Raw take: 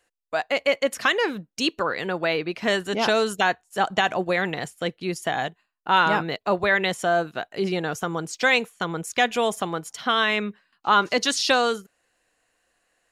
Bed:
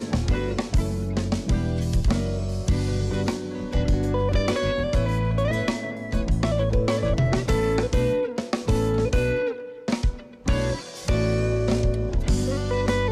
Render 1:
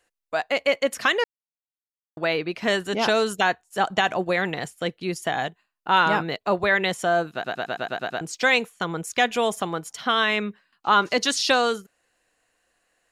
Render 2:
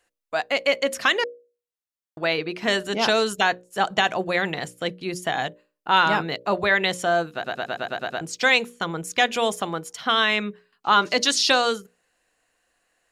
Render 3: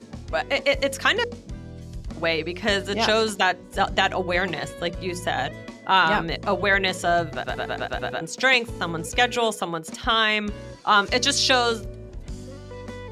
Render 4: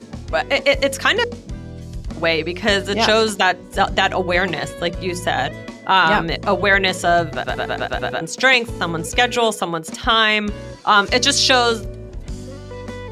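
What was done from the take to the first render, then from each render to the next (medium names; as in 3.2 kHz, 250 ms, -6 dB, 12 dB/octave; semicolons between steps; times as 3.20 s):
1.24–2.17 s: mute; 7.33 s: stutter in place 0.11 s, 8 plays
hum notches 60/120/180/240/300/360/420/480/540/600 Hz; dynamic bell 4.6 kHz, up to +4 dB, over -35 dBFS, Q 0.77
add bed -14 dB
trim +5.5 dB; peak limiter -3 dBFS, peak gain reduction 3 dB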